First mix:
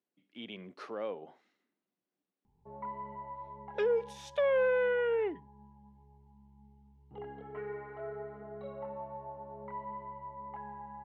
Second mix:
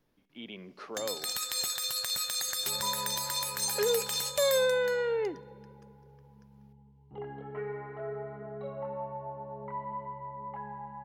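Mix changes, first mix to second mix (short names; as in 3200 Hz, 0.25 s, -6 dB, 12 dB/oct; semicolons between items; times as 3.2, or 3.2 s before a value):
first sound: unmuted; reverb: on, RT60 2.8 s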